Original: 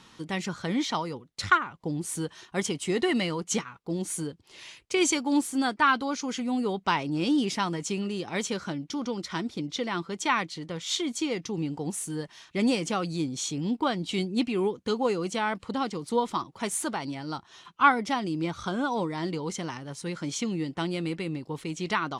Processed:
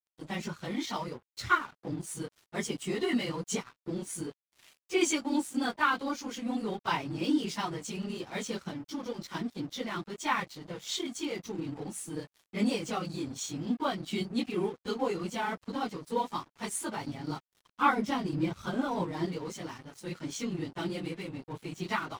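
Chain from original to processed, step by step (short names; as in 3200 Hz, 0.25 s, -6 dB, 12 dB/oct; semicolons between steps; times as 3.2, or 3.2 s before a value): phase scrambler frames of 50 ms; crossover distortion -44.5 dBFS; 16.97–19.26 low shelf 390 Hz +5.5 dB; gain -4 dB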